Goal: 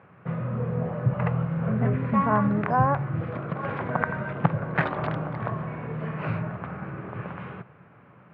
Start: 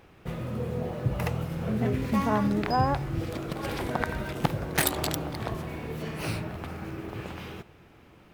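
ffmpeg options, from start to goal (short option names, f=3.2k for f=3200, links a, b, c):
-af "highpass=f=100:w=0.5412,highpass=f=100:w=1.3066,equalizer=f=120:t=q:w=4:g=6,equalizer=f=170:t=q:w=4:g=7,equalizer=f=330:t=q:w=4:g=-6,equalizer=f=580:t=q:w=4:g=4,equalizer=f=1.1k:t=q:w=4:g=7,equalizer=f=1.5k:t=q:w=4:g=5,lowpass=f=2.3k:w=0.5412,lowpass=f=2.3k:w=1.3066"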